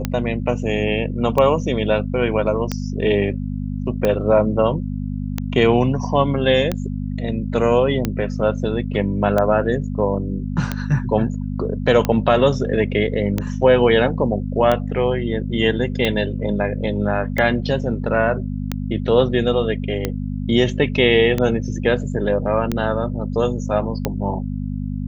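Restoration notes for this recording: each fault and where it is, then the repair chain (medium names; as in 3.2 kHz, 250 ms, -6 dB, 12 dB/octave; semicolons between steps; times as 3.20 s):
hum 50 Hz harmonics 5 -25 dBFS
tick 45 rpm -7 dBFS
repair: de-click; de-hum 50 Hz, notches 5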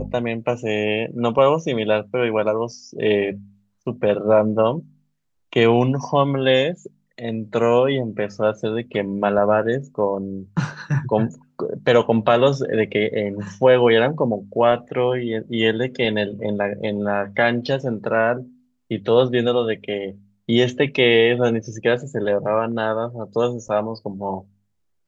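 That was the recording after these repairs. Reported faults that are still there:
nothing left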